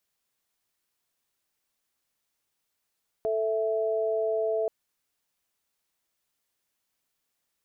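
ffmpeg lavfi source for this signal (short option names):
-f lavfi -i "aevalsrc='0.0447*(sin(2*PI*440*t)+sin(2*PI*659.26*t))':d=1.43:s=44100"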